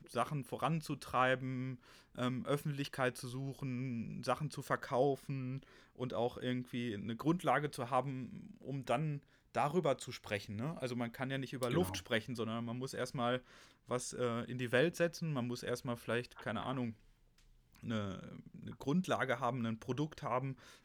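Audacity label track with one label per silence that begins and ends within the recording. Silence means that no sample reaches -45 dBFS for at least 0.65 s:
16.920000	17.830000	silence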